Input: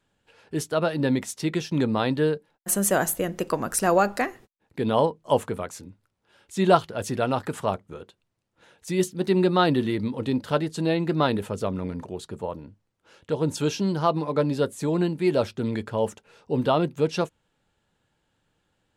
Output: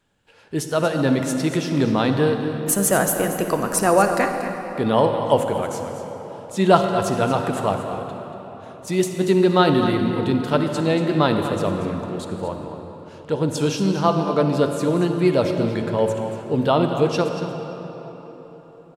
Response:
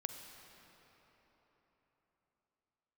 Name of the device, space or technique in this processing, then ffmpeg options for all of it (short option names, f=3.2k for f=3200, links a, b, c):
cave: -filter_complex "[0:a]aecho=1:1:234:0.266[a];[1:a]atrim=start_sample=2205[b];[a][b]afir=irnorm=-1:irlink=0,volume=5.5dB"